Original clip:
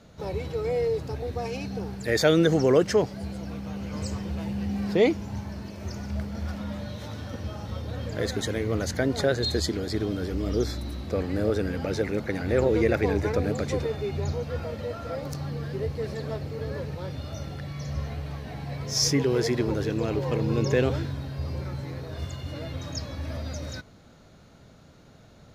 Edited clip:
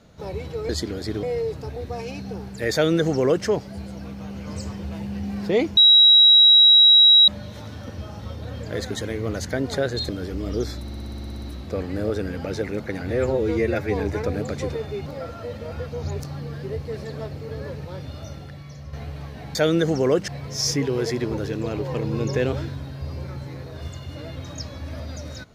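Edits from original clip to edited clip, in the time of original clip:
0:02.19–0:02.92: duplicate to 0:18.65
0:05.23–0:06.74: beep over 3,860 Hz −9 dBFS
0:09.55–0:10.09: move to 0:00.69
0:10.82: stutter 0.06 s, 11 plays
0:12.50–0:13.10: time-stretch 1.5×
0:14.16–0:15.30: reverse
0:17.28–0:18.03: fade out, to −9 dB

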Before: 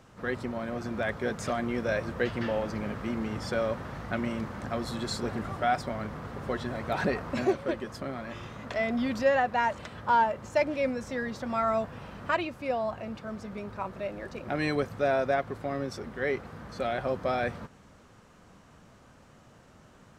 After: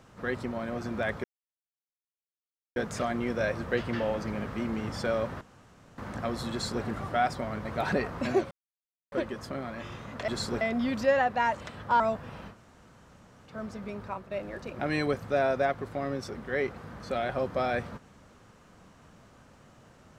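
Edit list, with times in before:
0:01.24: splice in silence 1.52 s
0:03.89–0:04.46: fill with room tone
0:04.99–0:05.32: duplicate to 0:08.79
0:06.13–0:06.77: remove
0:07.63: splice in silence 0.61 s
0:10.18–0:11.69: remove
0:12.21–0:13.19: fill with room tone, crossfade 0.10 s
0:13.74–0:14.00: fade out, to −8.5 dB

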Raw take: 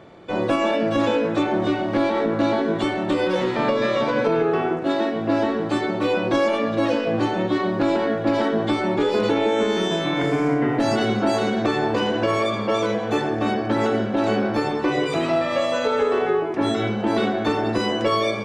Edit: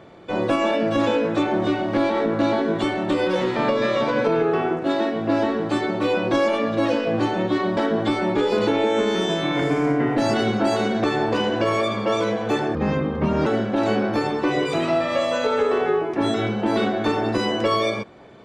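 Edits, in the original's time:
0:07.77–0:08.39: remove
0:13.37–0:13.87: play speed 70%

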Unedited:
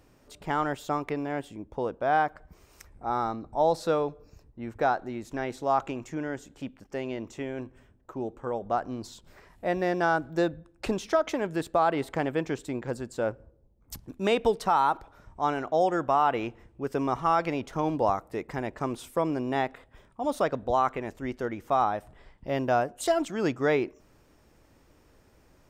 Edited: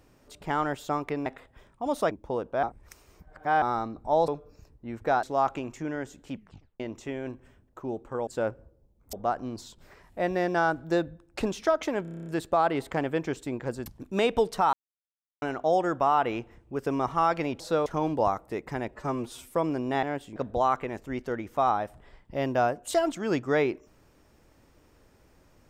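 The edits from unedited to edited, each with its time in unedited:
0:01.26–0:01.59: swap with 0:19.64–0:20.49
0:02.11–0:03.10: reverse
0:03.76–0:04.02: move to 0:17.68
0:04.97–0:05.55: remove
0:06.65: tape stop 0.47 s
0:11.48: stutter 0.03 s, 9 plays
0:13.08–0:13.94: move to 0:08.59
0:14.81–0:15.50: silence
0:18.70–0:19.12: time-stretch 1.5×

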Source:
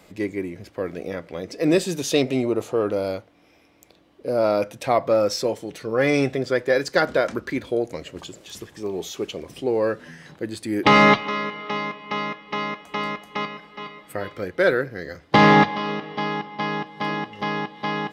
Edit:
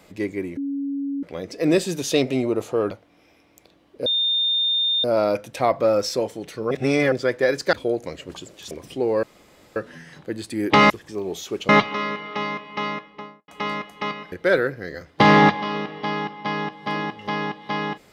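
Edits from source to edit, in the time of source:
0:00.57–0:01.23: beep over 279 Hz −23.5 dBFS
0:02.91–0:03.16: remove
0:04.31: insert tone 3,630 Hz −18 dBFS 0.98 s
0:05.98–0:06.39: reverse
0:07.00–0:07.60: remove
0:08.58–0:09.37: move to 0:11.03
0:09.89: splice in room tone 0.53 s
0:12.22–0:12.82: fade out and dull
0:13.66–0:14.46: remove

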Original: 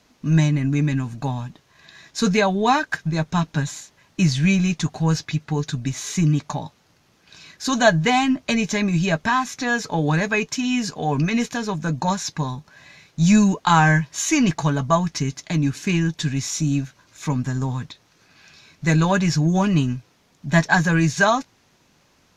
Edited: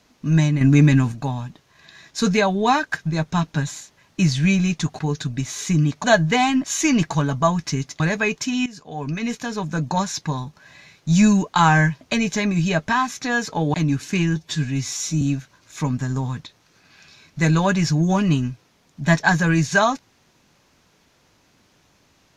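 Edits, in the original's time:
0:00.61–0:01.12: clip gain +7 dB
0:04.99–0:05.47: remove
0:06.52–0:07.78: remove
0:08.38–0:10.11: swap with 0:14.12–0:15.48
0:10.77–0:11.84: fade in, from −16.5 dB
0:16.10–0:16.67: time-stretch 1.5×

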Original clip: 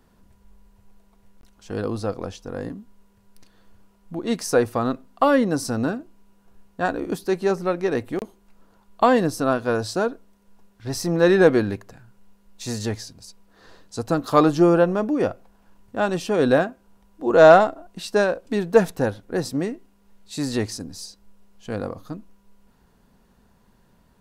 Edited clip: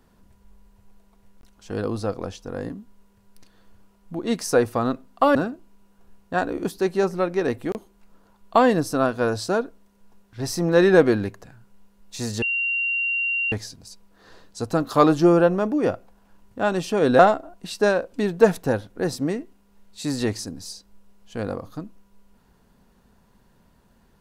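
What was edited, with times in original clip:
0:05.35–0:05.82: remove
0:12.89: insert tone 2,760 Hz −21 dBFS 1.10 s
0:16.56–0:17.52: remove

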